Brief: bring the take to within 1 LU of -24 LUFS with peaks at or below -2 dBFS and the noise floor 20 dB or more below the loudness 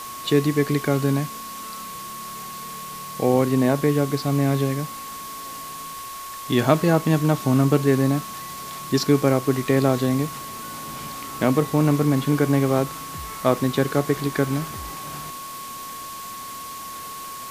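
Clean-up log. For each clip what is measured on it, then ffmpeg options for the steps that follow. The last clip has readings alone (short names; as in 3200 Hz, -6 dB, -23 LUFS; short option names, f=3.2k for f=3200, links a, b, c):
steady tone 1100 Hz; tone level -34 dBFS; noise floor -35 dBFS; noise floor target -42 dBFS; loudness -22.0 LUFS; peak -2.0 dBFS; loudness target -24.0 LUFS
-> -af "bandreject=f=1.1k:w=30"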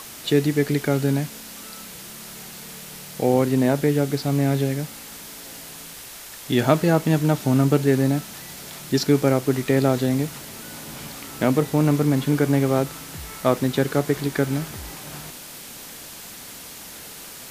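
steady tone none; noise floor -39 dBFS; noise floor target -42 dBFS
-> -af "afftdn=nr=6:nf=-39"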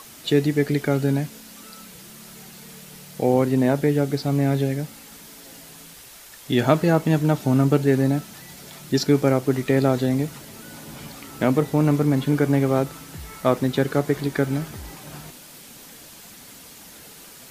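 noise floor -44 dBFS; loudness -21.5 LUFS; peak -2.0 dBFS; loudness target -24.0 LUFS
-> -af "volume=-2.5dB"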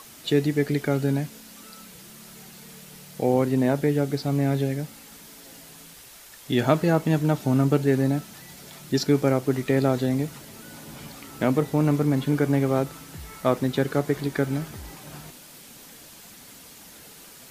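loudness -24.0 LUFS; peak -4.5 dBFS; noise floor -47 dBFS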